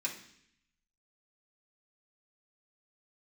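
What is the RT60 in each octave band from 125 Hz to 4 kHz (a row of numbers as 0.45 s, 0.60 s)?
1.0 s, 0.90 s, 0.70 s, 0.65 s, 0.85 s, 0.80 s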